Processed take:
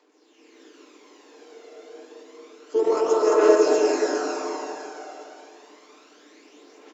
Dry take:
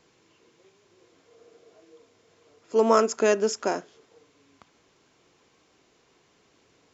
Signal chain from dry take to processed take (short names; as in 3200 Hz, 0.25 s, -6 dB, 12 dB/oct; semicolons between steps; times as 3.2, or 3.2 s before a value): Chebyshev high-pass 290 Hz, order 6; AM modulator 40 Hz, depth 35%; loudspeakers at several distances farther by 16 m -12 dB, 48 m -6 dB, 75 m -3 dB; limiter -19.5 dBFS, peak gain reduction 9.5 dB; low shelf 450 Hz +4.5 dB; reverb RT60 3.0 s, pre-delay 0.103 s, DRR -4 dB; harmoniser -4 st -7 dB; phaser 0.29 Hz, delay 1.5 ms, feedback 42%; comb 6.7 ms, depth 41%; AGC gain up to 6.5 dB; gain -3 dB